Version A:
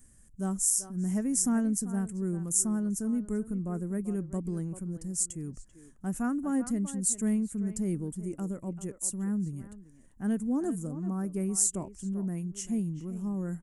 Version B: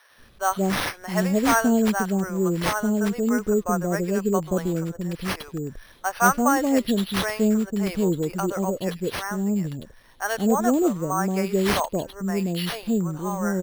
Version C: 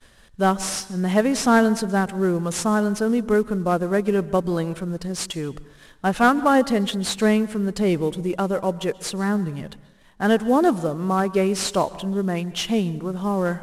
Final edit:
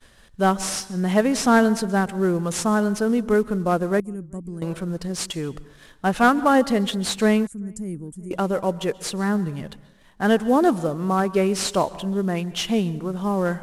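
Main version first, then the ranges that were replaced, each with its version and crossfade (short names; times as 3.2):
C
4–4.62 from A
7.47–8.31 from A
not used: B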